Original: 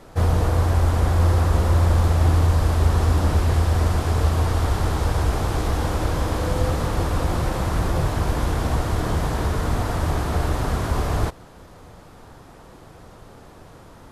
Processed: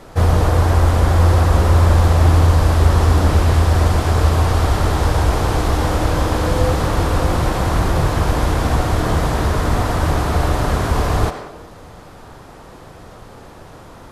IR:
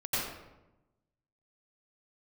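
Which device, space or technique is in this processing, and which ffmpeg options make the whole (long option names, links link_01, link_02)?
filtered reverb send: -filter_complex "[0:a]asplit=2[link_01][link_02];[link_02]highpass=350,lowpass=8100[link_03];[1:a]atrim=start_sample=2205[link_04];[link_03][link_04]afir=irnorm=-1:irlink=0,volume=-13.5dB[link_05];[link_01][link_05]amix=inputs=2:normalize=0,volume=5dB"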